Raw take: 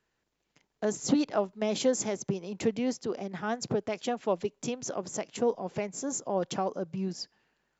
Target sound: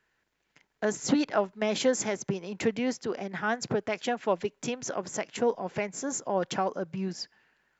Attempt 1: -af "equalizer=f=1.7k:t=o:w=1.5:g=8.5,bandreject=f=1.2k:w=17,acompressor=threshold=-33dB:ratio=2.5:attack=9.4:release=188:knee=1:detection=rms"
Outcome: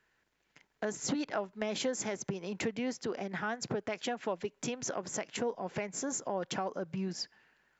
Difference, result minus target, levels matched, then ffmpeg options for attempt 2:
compressor: peak gain reduction +11 dB
-af "equalizer=f=1.7k:t=o:w=1.5:g=8.5,bandreject=f=1.2k:w=17"

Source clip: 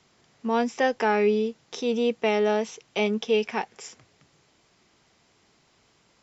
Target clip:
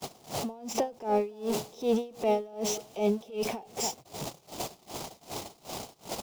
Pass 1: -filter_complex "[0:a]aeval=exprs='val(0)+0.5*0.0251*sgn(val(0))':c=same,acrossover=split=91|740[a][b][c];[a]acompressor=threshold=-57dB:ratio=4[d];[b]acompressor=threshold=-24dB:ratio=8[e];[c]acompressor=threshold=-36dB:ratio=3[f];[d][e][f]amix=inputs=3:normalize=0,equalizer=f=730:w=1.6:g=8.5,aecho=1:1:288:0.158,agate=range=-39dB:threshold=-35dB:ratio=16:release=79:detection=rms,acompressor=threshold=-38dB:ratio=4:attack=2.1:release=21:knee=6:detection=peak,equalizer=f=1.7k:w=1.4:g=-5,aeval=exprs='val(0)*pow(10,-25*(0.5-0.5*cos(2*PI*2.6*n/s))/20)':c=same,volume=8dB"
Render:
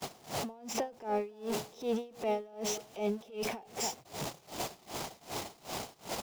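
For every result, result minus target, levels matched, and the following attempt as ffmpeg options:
compressor: peak gain reduction +7 dB; 2000 Hz band +5.0 dB
-filter_complex "[0:a]aeval=exprs='val(0)+0.5*0.0251*sgn(val(0))':c=same,acrossover=split=91|740[a][b][c];[a]acompressor=threshold=-57dB:ratio=4[d];[b]acompressor=threshold=-24dB:ratio=8[e];[c]acompressor=threshold=-36dB:ratio=3[f];[d][e][f]amix=inputs=3:normalize=0,equalizer=f=730:w=1.6:g=8.5,aecho=1:1:288:0.158,agate=range=-39dB:threshold=-35dB:ratio=16:release=79:detection=rms,acompressor=threshold=-29dB:ratio=4:attack=2.1:release=21:knee=6:detection=peak,equalizer=f=1.7k:w=1.4:g=-5,aeval=exprs='val(0)*pow(10,-25*(0.5-0.5*cos(2*PI*2.6*n/s))/20)':c=same,volume=8dB"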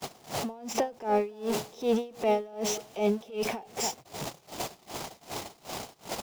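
2000 Hz band +3.5 dB
-filter_complex "[0:a]aeval=exprs='val(0)+0.5*0.0251*sgn(val(0))':c=same,acrossover=split=91|740[a][b][c];[a]acompressor=threshold=-57dB:ratio=4[d];[b]acompressor=threshold=-24dB:ratio=8[e];[c]acompressor=threshold=-36dB:ratio=3[f];[d][e][f]amix=inputs=3:normalize=0,equalizer=f=730:w=1.6:g=8.5,aecho=1:1:288:0.158,agate=range=-39dB:threshold=-35dB:ratio=16:release=79:detection=rms,acompressor=threshold=-29dB:ratio=4:attack=2.1:release=21:knee=6:detection=peak,equalizer=f=1.7k:w=1.4:g=-12,aeval=exprs='val(0)*pow(10,-25*(0.5-0.5*cos(2*PI*2.6*n/s))/20)':c=same,volume=8dB"

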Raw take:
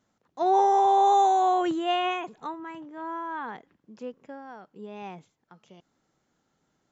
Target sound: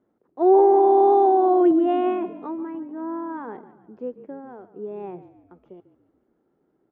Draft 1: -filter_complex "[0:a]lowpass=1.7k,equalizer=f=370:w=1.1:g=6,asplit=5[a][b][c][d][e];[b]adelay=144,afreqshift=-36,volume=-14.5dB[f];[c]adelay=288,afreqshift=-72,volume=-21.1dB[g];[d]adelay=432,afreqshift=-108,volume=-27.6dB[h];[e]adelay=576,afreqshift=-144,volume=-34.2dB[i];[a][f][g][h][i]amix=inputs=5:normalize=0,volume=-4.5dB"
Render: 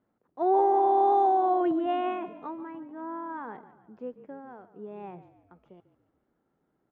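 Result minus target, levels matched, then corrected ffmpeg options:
500 Hz band -3.0 dB
-filter_complex "[0:a]lowpass=1.7k,equalizer=f=370:w=1.1:g=16.5,asplit=5[a][b][c][d][e];[b]adelay=144,afreqshift=-36,volume=-14.5dB[f];[c]adelay=288,afreqshift=-72,volume=-21.1dB[g];[d]adelay=432,afreqshift=-108,volume=-27.6dB[h];[e]adelay=576,afreqshift=-144,volume=-34.2dB[i];[a][f][g][h][i]amix=inputs=5:normalize=0,volume=-4.5dB"

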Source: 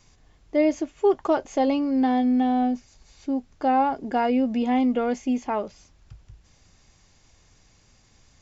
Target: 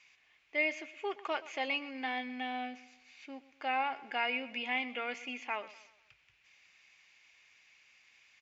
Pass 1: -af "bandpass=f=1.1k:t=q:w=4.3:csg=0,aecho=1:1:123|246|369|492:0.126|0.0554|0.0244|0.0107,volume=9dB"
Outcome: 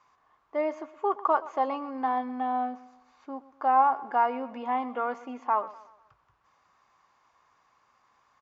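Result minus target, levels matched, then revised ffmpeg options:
2000 Hz band -13.5 dB
-af "bandpass=f=2.4k:t=q:w=4.3:csg=0,aecho=1:1:123|246|369|492:0.126|0.0554|0.0244|0.0107,volume=9dB"

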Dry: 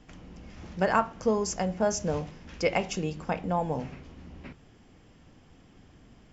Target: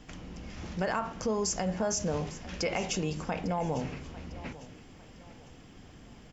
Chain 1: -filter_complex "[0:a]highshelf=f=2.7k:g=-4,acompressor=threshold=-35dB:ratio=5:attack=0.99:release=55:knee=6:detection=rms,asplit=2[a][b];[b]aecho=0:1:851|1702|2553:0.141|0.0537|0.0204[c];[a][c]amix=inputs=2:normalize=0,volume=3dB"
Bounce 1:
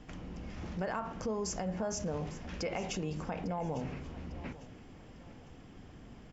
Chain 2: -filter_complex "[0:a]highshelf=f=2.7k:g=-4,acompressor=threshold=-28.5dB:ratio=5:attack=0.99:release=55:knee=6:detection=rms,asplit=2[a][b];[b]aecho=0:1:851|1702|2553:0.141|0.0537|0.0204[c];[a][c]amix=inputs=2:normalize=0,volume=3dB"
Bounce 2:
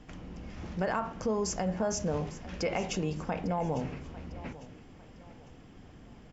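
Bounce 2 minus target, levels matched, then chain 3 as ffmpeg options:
4000 Hz band -3.5 dB
-filter_complex "[0:a]highshelf=f=2.7k:g=4.5,acompressor=threshold=-28.5dB:ratio=5:attack=0.99:release=55:knee=6:detection=rms,asplit=2[a][b];[b]aecho=0:1:851|1702|2553:0.141|0.0537|0.0204[c];[a][c]amix=inputs=2:normalize=0,volume=3dB"

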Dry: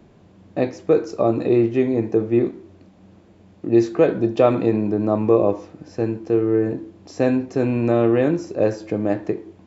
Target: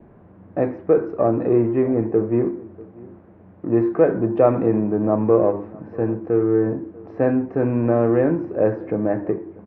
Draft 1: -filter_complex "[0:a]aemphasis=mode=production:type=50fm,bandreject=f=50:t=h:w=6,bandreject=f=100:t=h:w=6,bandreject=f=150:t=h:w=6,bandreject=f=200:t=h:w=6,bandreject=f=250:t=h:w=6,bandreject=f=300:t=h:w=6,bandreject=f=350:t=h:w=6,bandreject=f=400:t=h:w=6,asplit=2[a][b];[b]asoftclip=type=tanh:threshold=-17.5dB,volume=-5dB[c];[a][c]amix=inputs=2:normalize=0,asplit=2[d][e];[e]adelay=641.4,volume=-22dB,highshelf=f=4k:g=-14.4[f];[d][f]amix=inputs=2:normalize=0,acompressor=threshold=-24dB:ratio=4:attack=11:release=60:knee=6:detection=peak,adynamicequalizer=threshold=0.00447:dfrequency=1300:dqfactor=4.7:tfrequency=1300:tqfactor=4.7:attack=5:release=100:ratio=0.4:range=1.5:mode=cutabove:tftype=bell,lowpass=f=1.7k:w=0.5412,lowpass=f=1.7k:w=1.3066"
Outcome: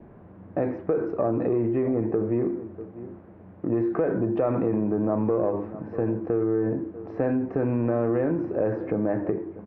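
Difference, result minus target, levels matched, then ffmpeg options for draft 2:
compressor: peak gain reduction +12.5 dB; soft clip: distortion -6 dB
-filter_complex "[0:a]aemphasis=mode=production:type=50fm,bandreject=f=50:t=h:w=6,bandreject=f=100:t=h:w=6,bandreject=f=150:t=h:w=6,bandreject=f=200:t=h:w=6,bandreject=f=250:t=h:w=6,bandreject=f=300:t=h:w=6,bandreject=f=350:t=h:w=6,bandreject=f=400:t=h:w=6,asplit=2[a][b];[b]asoftclip=type=tanh:threshold=-28.5dB,volume=-5dB[c];[a][c]amix=inputs=2:normalize=0,asplit=2[d][e];[e]adelay=641.4,volume=-22dB,highshelf=f=4k:g=-14.4[f];[d][f]amix=inputs=2:normalize=0,adynamicequalizer=threshold=0.00447:dfrequency=1300:dqfactor=4.7:tfrequency=1300:tqfactor=4.7:attack=5:release=100:ratio=0.4:range=1.5:mode=cutabove:tftype=bell,lowpass=f=1.7k:w=0.5412,lowpass=f=1.7k:w=1.3066"

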